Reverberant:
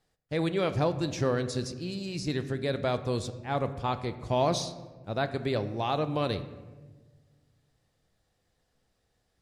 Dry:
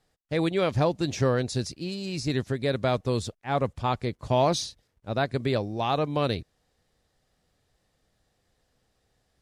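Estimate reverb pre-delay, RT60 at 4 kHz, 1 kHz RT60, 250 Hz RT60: 6 ms, 0.80 s, 1.1 s, 1.9 s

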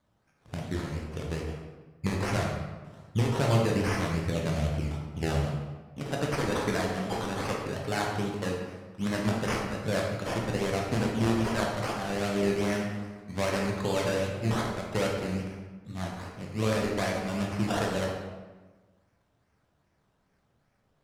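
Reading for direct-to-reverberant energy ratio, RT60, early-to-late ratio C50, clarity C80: −2.0 dB, 1.3 s, 2.0 dB, 4.5 dB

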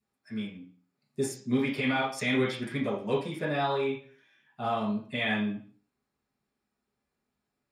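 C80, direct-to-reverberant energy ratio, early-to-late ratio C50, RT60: 10.5 dB, −7.5 dB, 5.0 dB, 0.45 s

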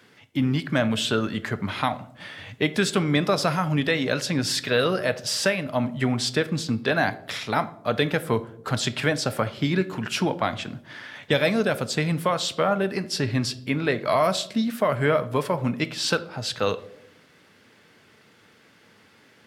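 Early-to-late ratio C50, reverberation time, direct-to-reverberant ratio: 16.5 dB, 0.75 s, 11.5 dB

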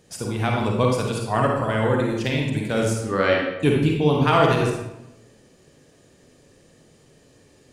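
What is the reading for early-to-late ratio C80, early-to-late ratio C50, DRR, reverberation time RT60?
4.5 dB, 0.5 dB, −1.0 dB, 0.95 s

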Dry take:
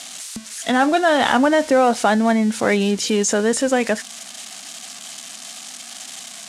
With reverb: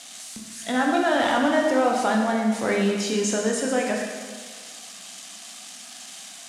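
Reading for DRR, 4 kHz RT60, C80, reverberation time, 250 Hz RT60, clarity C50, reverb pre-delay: −0.5 dB, 1.5 s, 3.5 dB, 1.6 s, 1.5 s, 2.0 dB, 9 ms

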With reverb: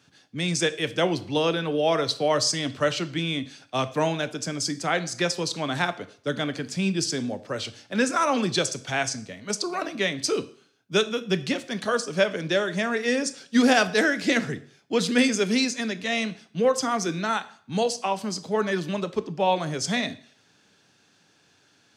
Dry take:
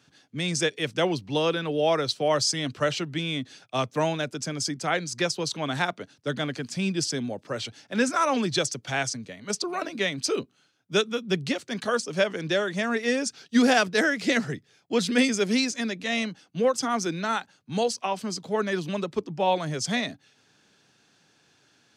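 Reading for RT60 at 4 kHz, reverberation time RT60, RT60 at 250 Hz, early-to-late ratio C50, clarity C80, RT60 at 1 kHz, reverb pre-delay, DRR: 0.50 s, 0.55 s, 0.50 s, 16.5 dB, 20.0 dB, 0.55 s, 5 ms, 11.5 dB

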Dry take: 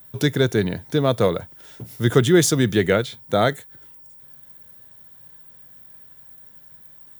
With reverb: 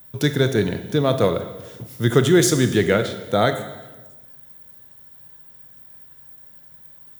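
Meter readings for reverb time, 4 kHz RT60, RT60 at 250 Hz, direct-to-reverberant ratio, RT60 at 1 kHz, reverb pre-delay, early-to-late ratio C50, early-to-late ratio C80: 1.2 s, 1.1 s, 1.4 s, 8.5 dB, 1.1 s, 22 ms, 10.0 dB, 12.5 dB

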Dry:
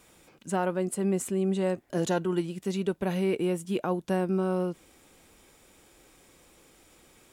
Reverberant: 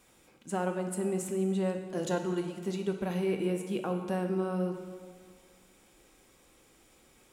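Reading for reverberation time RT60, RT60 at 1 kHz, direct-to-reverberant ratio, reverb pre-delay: 1.8 s, 1.8 s, 4.5 dB, 3 ms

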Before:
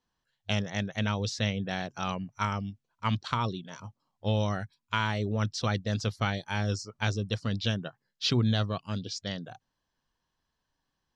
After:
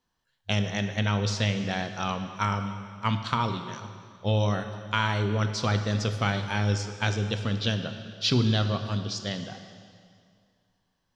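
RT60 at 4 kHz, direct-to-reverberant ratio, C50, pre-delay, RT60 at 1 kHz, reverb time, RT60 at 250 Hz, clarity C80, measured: 2.0 s, 6.5 dB, 8.0 dB, 5 ms, 2.2 s, 2.2 s, 2.3 s, 9.0 dB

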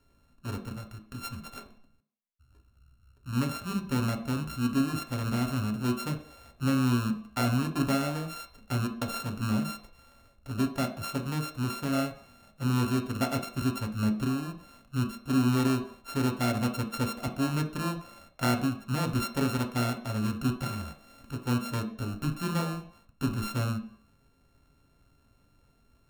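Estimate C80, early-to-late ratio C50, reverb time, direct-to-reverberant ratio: 13.5 dB, 10.5 dB, 0.60 s, 3.0 dB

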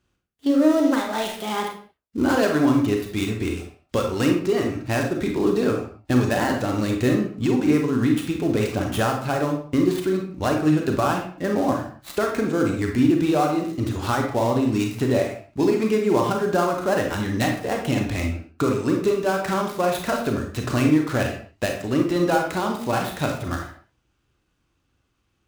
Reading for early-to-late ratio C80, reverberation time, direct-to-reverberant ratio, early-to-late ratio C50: 9.0 dB, non-exponential decay, 1.5 dB, 5.0 dB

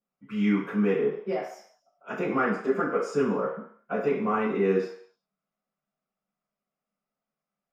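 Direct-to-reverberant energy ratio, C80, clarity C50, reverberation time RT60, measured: −13.0 dB, 7.0 dB, 3.5 dB, 0.60 s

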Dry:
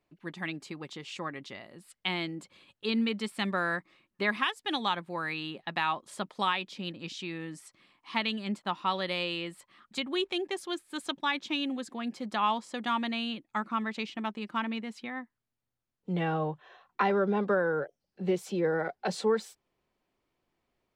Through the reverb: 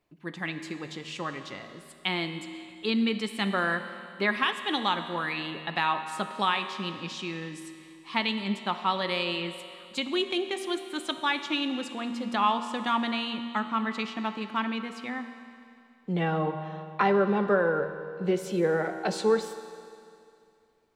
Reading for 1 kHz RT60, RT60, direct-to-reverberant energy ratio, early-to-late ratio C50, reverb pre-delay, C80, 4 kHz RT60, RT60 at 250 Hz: 2.4 s, 2.5 s, 7.5 dB, 9.0 dB, 13 ms, 10.0 dB, 2.4 s, 2.5 s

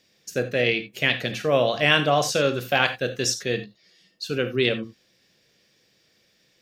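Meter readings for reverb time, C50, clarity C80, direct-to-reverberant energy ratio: non-exponential decay, 12.0 dB, 17.5 dB, 8.5 dB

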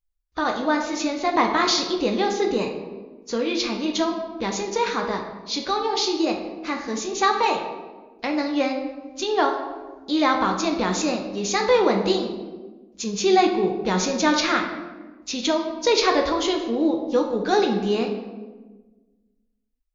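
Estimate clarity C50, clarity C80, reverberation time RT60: 6.0 dB, 8.5 dB, 1.3 s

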